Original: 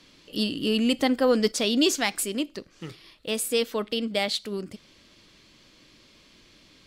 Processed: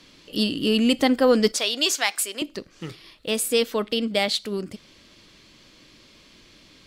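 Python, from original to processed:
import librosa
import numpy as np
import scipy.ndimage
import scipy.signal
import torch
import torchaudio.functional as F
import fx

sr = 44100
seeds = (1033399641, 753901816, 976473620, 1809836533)

y = fx.highpass(x, sr, hz=660.0, slope=12, at=(1.58, 2.42))
y = y * librosa.db_to_amplitude(3.5)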